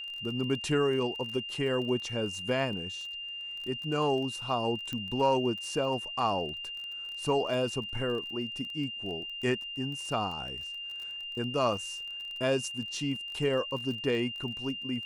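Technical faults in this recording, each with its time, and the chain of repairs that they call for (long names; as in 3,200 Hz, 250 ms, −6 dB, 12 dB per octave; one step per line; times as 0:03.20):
surface crackle 26 per second −38 dBFS
whistle 2,800 Hz −37 dBFS
0:04.93: click −22 dBFS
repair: click removal
notch filter 2,800 Hz, Q 30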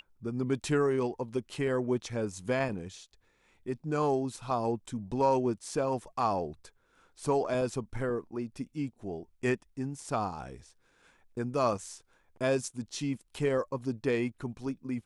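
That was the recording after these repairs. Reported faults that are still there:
0:04.93: click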